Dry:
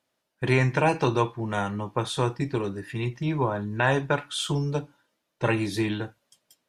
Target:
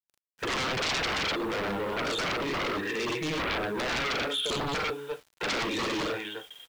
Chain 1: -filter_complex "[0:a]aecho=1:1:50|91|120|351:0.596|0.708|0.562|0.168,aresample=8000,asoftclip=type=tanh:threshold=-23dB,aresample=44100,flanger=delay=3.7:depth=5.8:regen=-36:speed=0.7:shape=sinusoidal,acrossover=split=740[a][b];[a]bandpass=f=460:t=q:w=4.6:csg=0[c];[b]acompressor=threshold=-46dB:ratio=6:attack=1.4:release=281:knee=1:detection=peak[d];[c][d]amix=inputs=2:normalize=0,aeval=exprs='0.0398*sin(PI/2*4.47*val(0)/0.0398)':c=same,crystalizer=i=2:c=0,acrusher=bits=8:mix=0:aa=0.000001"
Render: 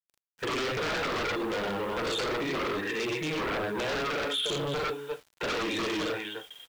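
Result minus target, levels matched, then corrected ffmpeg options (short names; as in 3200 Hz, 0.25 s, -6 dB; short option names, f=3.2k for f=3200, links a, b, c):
soft clip: distortion +13 dB
-filter_complex "[0:a]aecho=1:1:50|91|120|351:0.596|0.708|0.562|0.168,aresample=8000,asoftclip=type=tanh:threshold=-11dB,aresample=44100,flanger=delay=3.7:depth=5.8:regen=-36:speed=0.7:shape=sinusoidal,acrossover=split=740[a][b];[a]bandpass=f=460:t=q:w=4.6:csg=0[c];[b]acompressor=threshold=-46dB:ratio=6:attack=1.4:release=281:knee=1:detection=peak[d];[c][d]amix=inputs=2:normalize=0,aeval=exprs='0.0398*sin(PI/2*4.47*val(0)/0.0398)':c=same,crystalizer=i=2:c=0,acrusher=bits=8:mix=0:aa=0.000001"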